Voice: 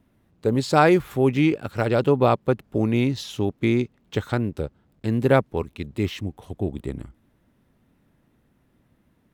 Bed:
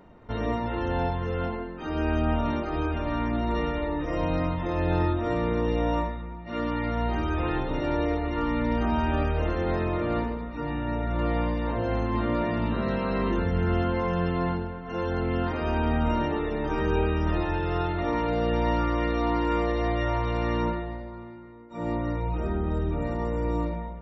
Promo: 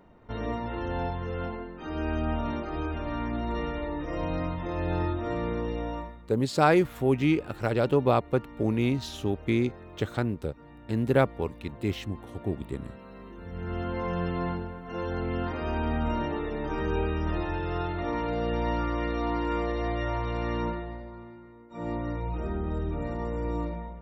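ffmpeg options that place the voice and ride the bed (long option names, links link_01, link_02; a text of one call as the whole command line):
ffmpeg -i stem1.wav -i stem2.wav -filter_complex "[0:a]adelay=5850,volume=-4.5dB[link_01];[1:a]volume=12dB,afade=type=out:start_time=5.48:duration=0.94:silence=0.16788,afade=type=in:start_time=13.37:duration=0.74:silence=0.158489[link_02];[link_01][link_02]amix=inputs=2:normalize=0" out.wav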